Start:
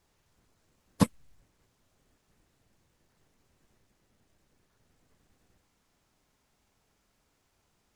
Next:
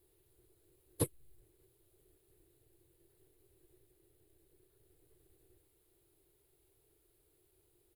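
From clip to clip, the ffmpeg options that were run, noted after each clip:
ffmpeg -i in.wav -filter_complex "[0:a]firequalizer=gain_entry='entry(140,0);entry(210,-25);entry(350,12);entry(560,-5);entry(1000,-12);entry(4000,-3);entry(5800,-14);entry(10000,9)':delay=0.05:min_phase=1,asplit=2[link_01][link_02];[link_02]alimiter=level_in=3dB:limit=-24dB:level=0:latency=1:release=456,volume=-3dB,volume=1dB[link_03];[link_01][link_03]amix=inputs=2:normalize=0,volume=-7dB" out.wav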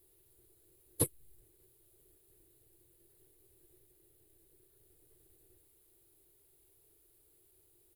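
ffmpeg -i in.wav -af "highshelf=frequency=6600:gain=9" out.wav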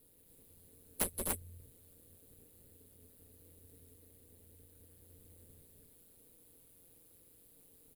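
ffmpeg -i in.wav -af "aecho=1:1:32.07|180.8|256.6|288.6:0.251|0.447|0.501|0.794,aeval=exprs='0.178*(cos(1*acos(clip(val(0)/0.178,-1,1)))-cos(1*PI/2))+0.0891*(cos(7*acos(clip(val(0)/0.178,-1,1)))-cos(7*PI/2))':channel_layout=same,aeval=exprs='val(0)*sin(2*PI*87*n/s)':channel_layout=same,volume=-3.5dB" out.wav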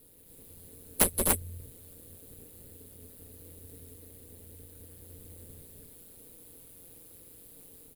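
ffmpeg -i in.wav -af "dynaudnorm=framelen=230:gausssize=3:maxgain=3dB,volume=7.5dB" out.wav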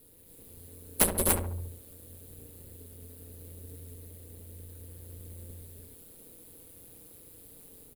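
ffmpeg -i in.wav -filter_complex "[0:a]asplit=2[link_01][link_02];[link_02]adelay=69,lowpass=frequency=1200:poles=1,volume=-5dB,asplit=2[link_03][link_04];[link_04]adelay=69,lowpass=frequency=1200:poles=1,volume=0.54,asplit=2[link_05][link_06];[link_06]adelay=69,lowpass=frequency=1200:poles=1,volume=0.54,asplit=2[link_07][link_08];[link_08]adelay=69,lowpass=frequency=1200:poles=1,volume=0.54,asplit=2[link_09][link_10];[link_10]adelay=69,lowpass=frequency=1200:poles=1,volume=0.54,asplit=2[link_11][link_12];[link_12]adelay=69,lowpass=frequency=1200:poles=1,volume=0.54,asplit=2[link_13][link_14];[link_14]adelay=69,lowpass=frequency=1200:poles=1,volume=0.54[link_15];[link_01][link_03][link_05][link_07][link_09][link_11][link_13][link_15]amix=inputs=8:normalize=0" out.wav

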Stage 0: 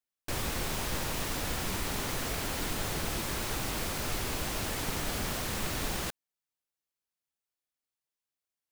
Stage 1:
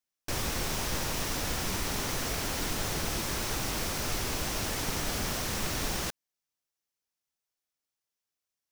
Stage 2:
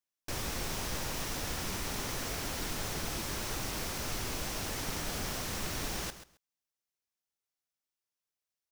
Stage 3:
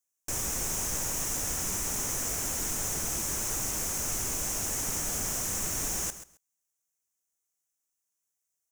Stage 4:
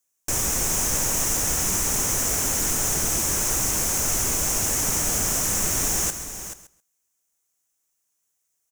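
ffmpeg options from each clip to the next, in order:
ffmpeg -i in.wav -af "equalizer=frequency=5700:width=3.1:gain=5,volume=1dB" out.wav
ffmpeg -i in.wav -af "aecho=1:1:134|268:0.224|0.0358,volume=-4.5dB" out.wav
ffmpeg -i in.wav -af "highshelf=frequency=5400:width_type=q:width=3:gain=7.5" out.wav
ffmpeg -i in.wav -af "aecho=1:1:432:0.282,volume=8dB" out.wav

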